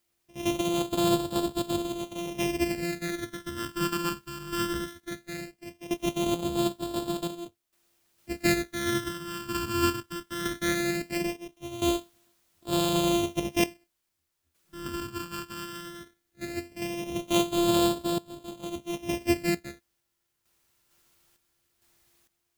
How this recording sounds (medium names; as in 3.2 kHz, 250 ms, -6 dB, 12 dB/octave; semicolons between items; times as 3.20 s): a buzz of ramps at a fixed pitch in blocks of 128 samples; phasing stages 12, 0.18 Hz, lowest notch 670–2000 Hz; a quantiser's noise floor 12-bit, dither triangular; random-step tremolo 2.2 Hz, depth 85%